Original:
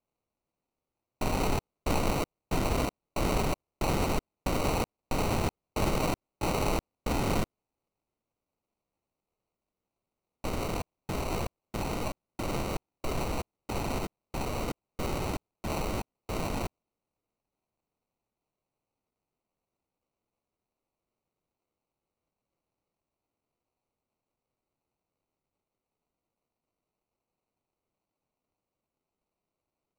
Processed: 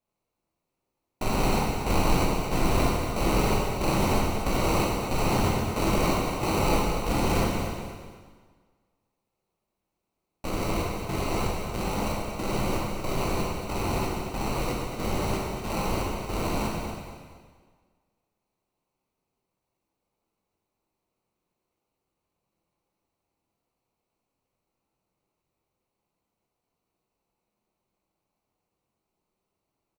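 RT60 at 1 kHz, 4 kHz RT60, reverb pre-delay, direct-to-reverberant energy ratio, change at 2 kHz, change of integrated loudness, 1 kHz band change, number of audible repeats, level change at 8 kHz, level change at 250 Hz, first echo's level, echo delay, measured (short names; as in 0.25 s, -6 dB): 1.6 s, 1.5 s, 12 ms, -4.0 dB, +5.5 dB, +5.0 dB, +5.5 dB, 1, +5.0 dB, +5.5 dB, -9.0 dB, 0.234 s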